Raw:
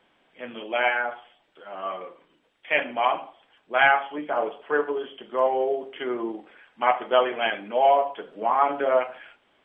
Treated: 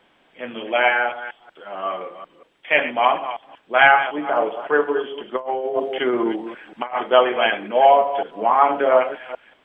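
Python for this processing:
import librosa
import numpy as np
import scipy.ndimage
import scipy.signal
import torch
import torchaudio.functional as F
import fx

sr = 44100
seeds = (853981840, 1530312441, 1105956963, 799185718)

y = fx.reverse_delay(x, sr, ms=187, wet_db=-11.5)
y = fx.over_compress(y, sr, threshold_db=-27.0, ratio=-0.5, at=(5.35, 7.01))
y = F.gain(torch.from_numpy(y), 5.5).numpy()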